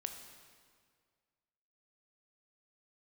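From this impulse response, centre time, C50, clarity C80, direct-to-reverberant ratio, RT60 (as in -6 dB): 33 ms, 7.0 dB, 8.0 dB, 5.5 dB, 1.9 s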